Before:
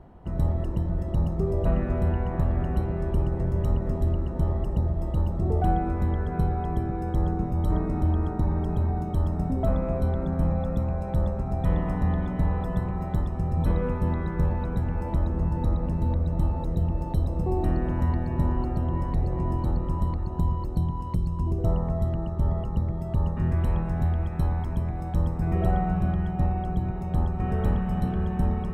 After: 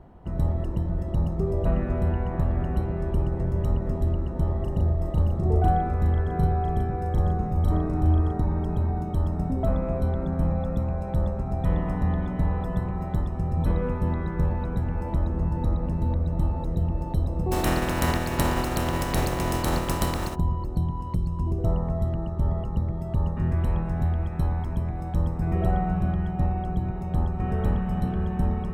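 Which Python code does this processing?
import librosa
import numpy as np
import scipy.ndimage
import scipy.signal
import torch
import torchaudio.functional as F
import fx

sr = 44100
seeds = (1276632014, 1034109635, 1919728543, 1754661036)

y = fx.doubler(x, sr, ms=38.0, db=-3.5, at=(4.58, 8.42))
y = fx.spec_flatten(y, sr, power=0.47, at=(17.51, 20.34), fade=0.02)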